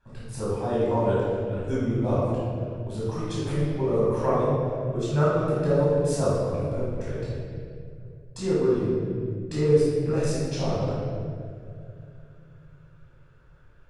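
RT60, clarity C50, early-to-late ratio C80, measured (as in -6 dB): 2.5 s, -3.5 dB, -0.5 dB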